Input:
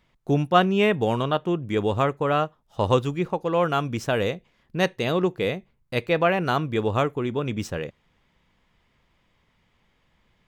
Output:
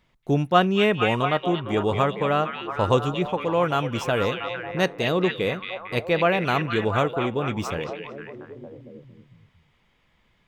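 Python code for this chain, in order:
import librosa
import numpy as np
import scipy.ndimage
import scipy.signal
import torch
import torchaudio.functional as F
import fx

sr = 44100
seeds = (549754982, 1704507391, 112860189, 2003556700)

y = fx.echo_stepped(x, sr, ms=228, hz=2800.0, octaves=-0.7, feedback_pct=70, wet_db=-1.0)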